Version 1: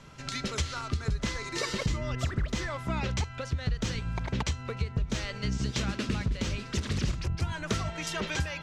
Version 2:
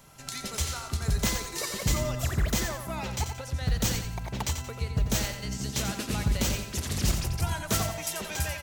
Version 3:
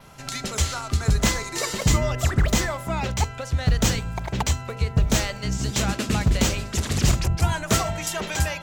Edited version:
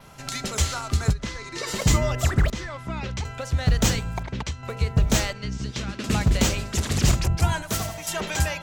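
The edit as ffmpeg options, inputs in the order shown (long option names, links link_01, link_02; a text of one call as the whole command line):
ffmpeg -i take0.wav -i take1.wav -i take2.wav -filter_complex "[0:a]asplit=4[link_01][link_02][link_03][link_04];[2:a]asplit=6[link_05][link_06][link_07][link_08][link_09][link_10];[link_05]atrim=end=1.14[link_11];[link_01]atrim=start=1.1:end=1.69[link_12];[link_06]atrim=start=1.65:end=2.502[link_13];[link_02]atrim=start=2.498:end=3.252[link_14];[link_07]atrim=start=3.248:end=4.232[link_15];[link_03]atrim=start=4.228:end=4.632[link_16];[link_08]atrim=start=4.628:end=5.332[link_17];[link_04]atrim=start=5.328:end=6.042[link_18];[link_09]atrim=start=6.038:end=7.622[link_19];[1:a]atrim=start=7.618:end=8.082[link_20];[link_10]atrim=start=8.078[link_21];[link_11][link_12]acrossfade=duration=0.04:curve1=tri:curve2=tri[link_22];[link_22][link_13]acrossfade=duration=0.04:curve1=tri:curve2=tri[link_23];[link_23][link_14]acrossfade=duration=0.004:curve1=hsin:curve2=hsin[link_24];[link_24][link_15]acrossfade=duration=0.004:curve1=hsin:curve2=hsin[link_25];[link_25][link_16]acrossfade=duration=0.004:curve1=hsin:curve2=hsin[link_26];[link_26][link_17]acrossfade=duration=0.004:curve1=hsin:curve2=hsin[link_27];[link_27][link_18]acrossfade=duration=0.004:curve1=hsin:curve2=hsin[link_28];[link_28][link_19]acrossfade=duration=0.004:curve1=hsin:curve2=hsin[link_29];[link_29][link_20]acrossfade=duration=0.004:curve1=hsin:curve2=hsin[link_30];[link_30][link_21]acrossfade=duration=0.004:curve1=hsin:curve2=hsin" out.wav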